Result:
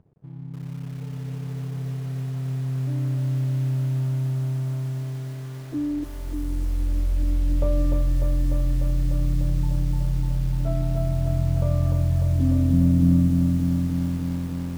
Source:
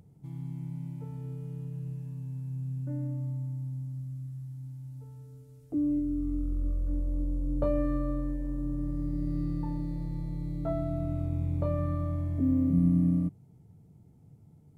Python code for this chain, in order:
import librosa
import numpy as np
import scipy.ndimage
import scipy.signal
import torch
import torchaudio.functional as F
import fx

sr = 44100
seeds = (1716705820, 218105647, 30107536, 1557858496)

p1 = fx.lowpass(x, sr, hz=1000.0, slope=6)
p2 = np.sign(p1) * np.maximum(np.abs(p1) - 10.0 ** (-59.0 / 20.0), 0.0)
p3 = p2 + fx.echo_single(p2, sr, ms=307, db=-20.5, dry=0)
p4 = fx.echo_crushed(p3, sr, ms=298, feedback_pct=80, bits=8, wet_db=-3.5)
y = p4 * 10.0 ** (2.0 / 20.0)